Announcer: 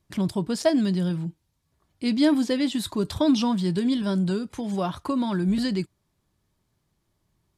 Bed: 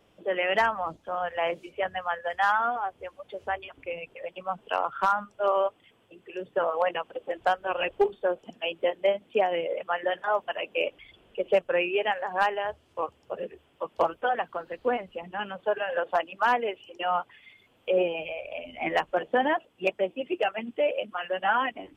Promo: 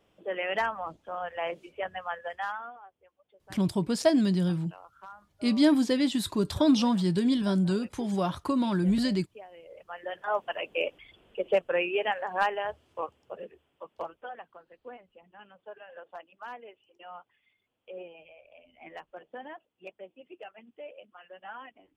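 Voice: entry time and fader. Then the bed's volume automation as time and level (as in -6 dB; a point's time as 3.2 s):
3.40 s, -1.5 dB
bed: 2.25 s -5 dB
2.97 s -23 dB
9.53 s -23 dB
10.37 s -2 dB
12.83 s -2 dB
14.71 s -18.5 dB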